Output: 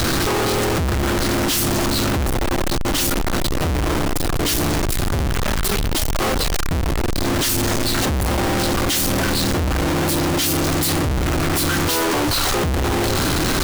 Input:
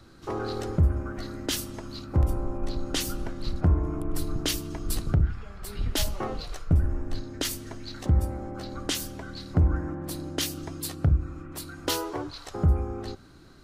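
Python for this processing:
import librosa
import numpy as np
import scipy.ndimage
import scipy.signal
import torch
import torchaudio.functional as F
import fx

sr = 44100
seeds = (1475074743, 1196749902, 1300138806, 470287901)

y = np.sign(x) * np.sqrt(np.mean(np.square(x)))
y = y * 10.0 ** (8.5 / 20.0)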